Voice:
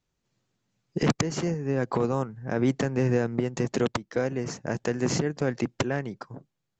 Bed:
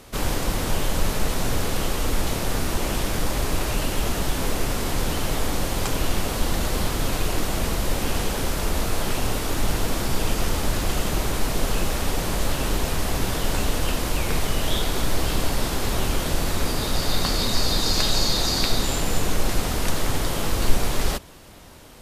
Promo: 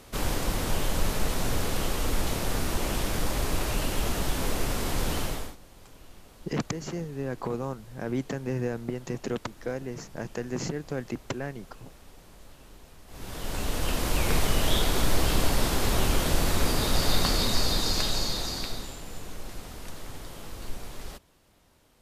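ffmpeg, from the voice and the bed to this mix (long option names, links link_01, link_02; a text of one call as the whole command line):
ffmpeg -i stem1.wav -i stem2.wav -filter_complex "[0:a]adelay=5500,volume=-6dB[link_01];[1:a]volume=22dB,afade=type=out:start_time=5.19:duration=0.37:silence=0.0707946,afade=type=in:start_time=13.07:duration=1.21:silence=0.0501187,afade=type=out:start_time=17.09:duration=1.87:silence=0.158489[link_02];[link_01][link_02]amix=inputs=2:normalize=0" out.wav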